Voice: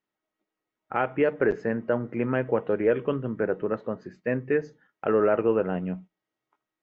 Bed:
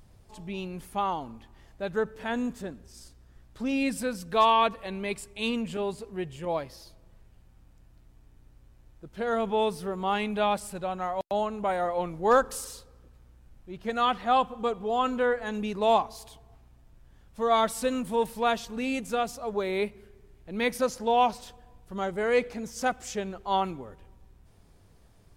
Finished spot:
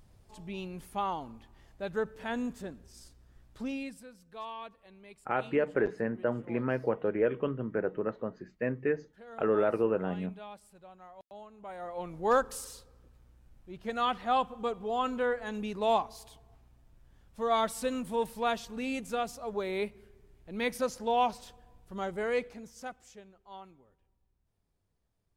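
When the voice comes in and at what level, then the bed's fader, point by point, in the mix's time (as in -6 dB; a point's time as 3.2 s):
4.35 s, -5.0 dB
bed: 3.61 s -4 dB
4.07 s -20.5 dB
11.5 s -20.5 dB
12.18 s -4.5 dB
22.22 s -4.5 dB
23.34 s -21.5 dB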